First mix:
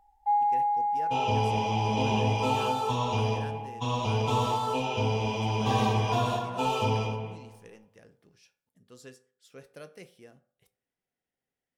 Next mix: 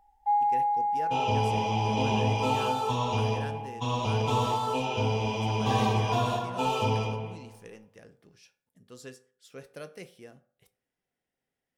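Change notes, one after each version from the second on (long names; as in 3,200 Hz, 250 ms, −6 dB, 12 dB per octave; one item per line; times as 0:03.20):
speech +3.5 dB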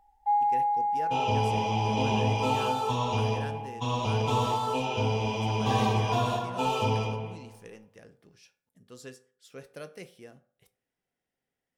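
nothing changed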